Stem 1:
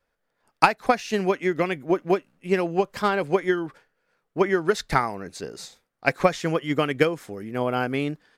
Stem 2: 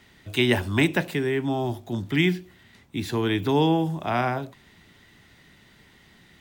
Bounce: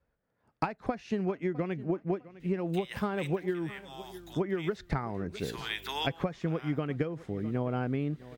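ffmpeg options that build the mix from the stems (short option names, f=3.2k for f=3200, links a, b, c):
-filter_complex "[0:a]highpass=66,aemphasis=mode=reproduction:type=riaa,volume=-5dB,asplit=3[a][b][c];[b]volume=-23.5dB[d];[1:a]highpass=1.4k,aeval=exprs='val(0)+0.00224*(sin(2*PI*50*n/s)+sin(2*PI*2*50*n/s)/2+sin(2*PI*3*50*n/s)/3+sin(2*PI*4*50*n/s)/4+sin(2*PI*5*50*n/s)/5)':c=same,adelay=2400,volume=0.5dB[e];[c]apad=whole_len=388416[f];[e][f]sidechaincompress=threshold=-30dB:ratio=6:attack=12:release=979[g];[d]aecho=0:1:655|1310|1965|2620:1|0.31|0.0961|0.0298[h];[a][g][h]amix=inputs=3:normalize=0,acompressor=threshold=-27dB:ratio=10"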